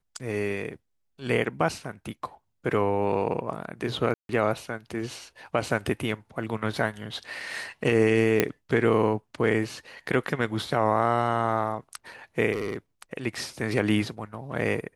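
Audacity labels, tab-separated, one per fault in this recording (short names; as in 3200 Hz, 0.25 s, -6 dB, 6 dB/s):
4.140000	4.290000	gap 0.152 s
8.400000	8.400000	pop -6 dBFS
12.520000	12.770000	clipped -24.5 dBFS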